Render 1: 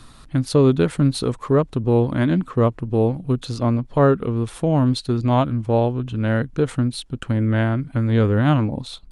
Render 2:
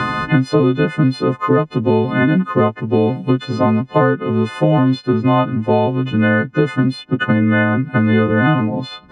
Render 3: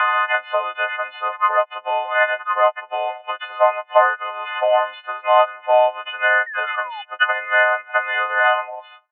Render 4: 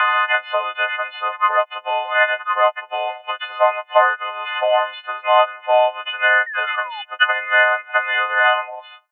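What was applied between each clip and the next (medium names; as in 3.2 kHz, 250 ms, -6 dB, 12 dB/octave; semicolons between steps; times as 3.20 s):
partials quantised in pitch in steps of 3 st; Chebyshev band-pass 160–2000 Hz, order 2; three bands compressed up and down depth 100%; trim +5 dB
fade out at the end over 0.66 s; Chebyshev band-pass 590–3100 Hz, order 5; painted sound fall, 6.46–7.02 s, 790–1900 Hz -35 dBFS; trim +4 dB
treble shelf 2.8 kHz +11 dB; trim -1 dB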